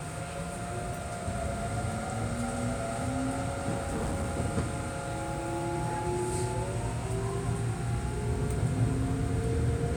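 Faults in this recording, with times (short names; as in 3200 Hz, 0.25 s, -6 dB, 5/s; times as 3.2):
3.74–4.38 clipped -28 dBFS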